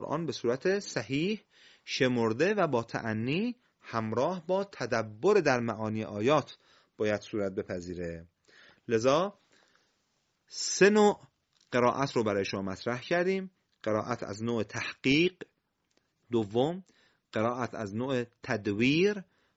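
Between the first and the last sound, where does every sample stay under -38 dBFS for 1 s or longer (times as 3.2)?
9.29–10.54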